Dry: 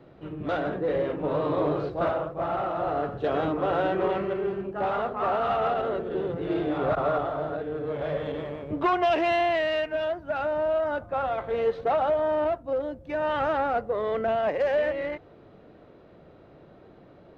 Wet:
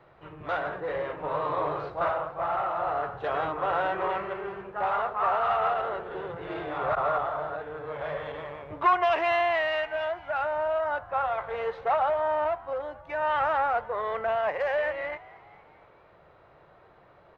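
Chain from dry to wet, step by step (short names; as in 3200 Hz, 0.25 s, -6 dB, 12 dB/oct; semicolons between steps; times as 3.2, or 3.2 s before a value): graphic EQ 250/1000/2000 Hz -12/+9/+6 dB; on a send: frequency-shifting echo 0.231 s, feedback 58%, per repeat +77 Hz, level -21.5 dB; on the sum: gain -5 dB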